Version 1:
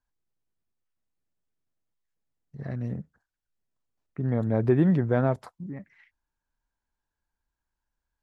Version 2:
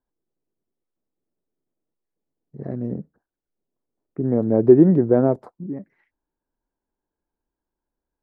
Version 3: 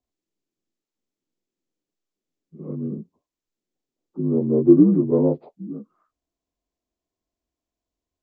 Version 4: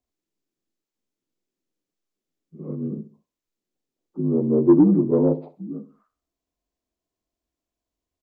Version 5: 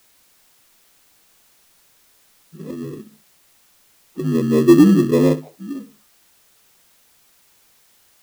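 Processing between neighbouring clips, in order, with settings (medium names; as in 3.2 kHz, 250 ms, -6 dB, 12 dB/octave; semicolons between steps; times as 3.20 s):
FFT filter 100 Hz 0 dB, 360 Hz +15 dB, 2.8 kHz -10 dB; trim -2.5 dB
frequency axis rescaled in octaves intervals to 77%
feedback delay 65 ms, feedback 37%, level -15 dB; saturation -5 dBFS, distortion -19 dB
touch-sensitive flanger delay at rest 6.5 ms, full sweep at -14.5 dBFS; in parallel at -9 dB: sample-rate reducer 1.5 kHz, jitter 0%; on the sum: added noise white -59 dBFS; trim +2.5 dB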